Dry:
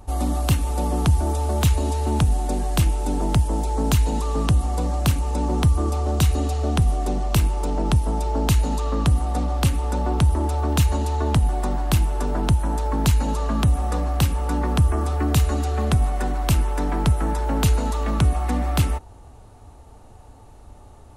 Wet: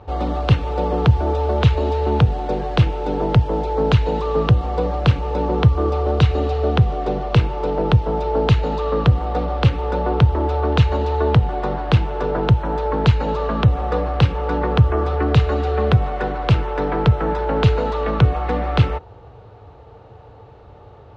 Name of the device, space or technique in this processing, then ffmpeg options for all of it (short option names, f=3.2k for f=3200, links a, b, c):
guitar cabinet: -af "highpass=77,equalizer=f=120:t=q:w=4:g=6,equalizer=f=250:t=q:w=4:g=-9,equalizer=f=470:t=q:w=4:g=10,equalizer=f=1.4k:t=q:w=4:g=3,lowpass=f=3.9k:w=0.5412,lowpass=f=3.9k:w=1.3066,volume=4dB"